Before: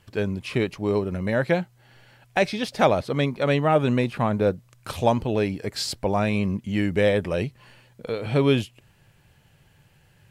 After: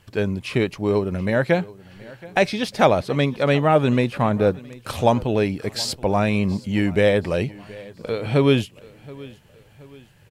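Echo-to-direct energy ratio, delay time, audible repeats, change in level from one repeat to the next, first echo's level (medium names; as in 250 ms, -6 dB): -20.0 dB, 725 ms, 2, -7.5 dB, -21.0 dB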